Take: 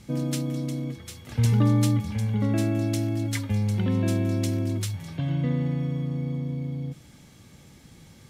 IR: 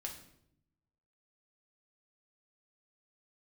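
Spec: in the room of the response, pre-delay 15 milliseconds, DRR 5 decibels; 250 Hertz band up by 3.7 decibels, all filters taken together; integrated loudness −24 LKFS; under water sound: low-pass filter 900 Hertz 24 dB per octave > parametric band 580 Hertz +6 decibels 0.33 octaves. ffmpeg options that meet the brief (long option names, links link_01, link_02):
-filter_complex "[0:a]equalizer=frequency=250:width_type=o:gain=4.5,asplit=2[link_01][link_02];[1:a]atrim=start_sample=2205,adelay=15[link_03];[link_02][link_03]afir=irnorm=-1:irlink=0,volume=-3dB[link_04];[link_01][link_04]amix=inputs=2:normalize=0,lowpass=frequency=900:width=0.5412,lowpass=frequency=900:width=1.3066,equalizer=frequency=580:width_type=o:width=0.33:gain=6,volume=-2dB"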